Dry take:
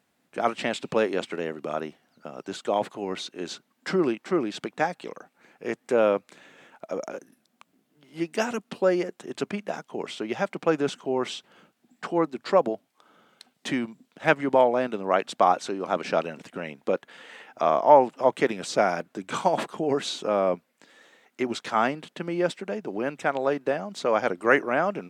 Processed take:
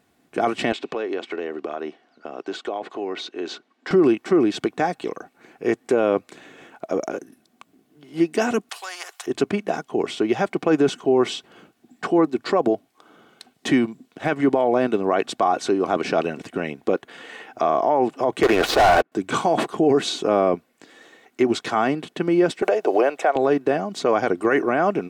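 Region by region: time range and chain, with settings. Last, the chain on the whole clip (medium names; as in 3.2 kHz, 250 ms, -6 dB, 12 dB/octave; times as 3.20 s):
0.72–3.91 s: band-pass 320–4600 Hz + compression 3:1, threshold -34 dBFS
8.69–9.27 s: steep high-pass 840 Hz + spectrum-flattening compressor 2:1
18.43–19.12 s: band-pass 470–2300 Hz + waveshaping leveller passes 5 + loudspeaker Doppler distortion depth 0.15 ms
22.62–23.36 s: resonant high-pass 580 Hz, resonance Q 2.5 + three bands compressed up and down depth 100%
whole clip: bass shelf 480 Hz +7 dB; comb 2.7 ms, depth 38%; peak limiter -13.5 dBFS; trim +4.5 dB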